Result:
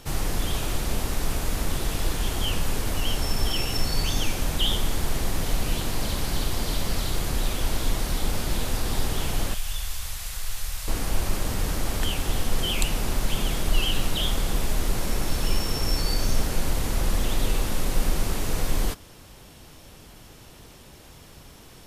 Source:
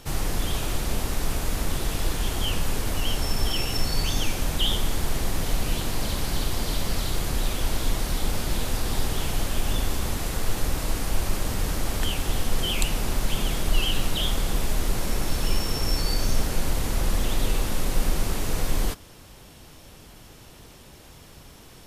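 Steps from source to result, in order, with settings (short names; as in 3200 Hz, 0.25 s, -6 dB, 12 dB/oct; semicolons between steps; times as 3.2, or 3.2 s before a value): 9.54–10.88 passive tone stack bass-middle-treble 10-0-10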